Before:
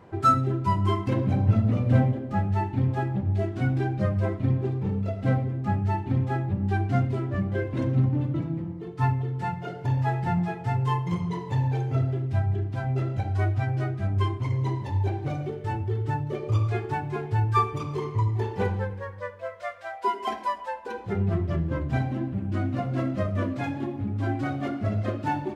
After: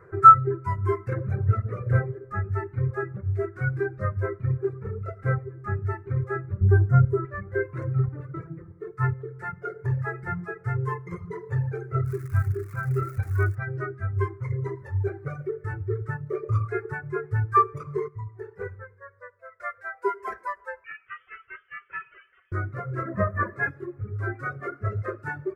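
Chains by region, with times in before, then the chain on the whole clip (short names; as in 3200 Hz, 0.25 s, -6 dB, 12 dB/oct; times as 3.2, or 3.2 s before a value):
6.61–7.25 Butterworth band-stop 3100 Hz, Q 0.73 + low shelf 270 Hz +11.5 dB
12.04–13.54 comb 0.8 ms, depth 45% + crackle 410/s -30 dBFS
18.08–19.6 notch 3400 Hz, Q 16 + resonator 140 Hz, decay 0.76 s, mix 70%
20.84–22.52 HPF 690 Hz + inverted band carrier 3300 Hz
23.05–23.69 crackle 330/s -51 dBFS + small resonant body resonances 220/630/1000/1700 Hz, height 14 dB, ringing for 20 ms + ensemble effect
whole clip: EQ curve 150 Hz 0 dB, 260 Hz -23 dB, 400 Hz +8 dB, 590 Hz -5 dB, 850 Hz -13 dB, 1300 Hz +10 dB, 2100 Hz 0 dB, 3100 Hz -24 dB, 4900 Hz -14 dB, 9600 Hz -5 dB; reverb removal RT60 1.3 s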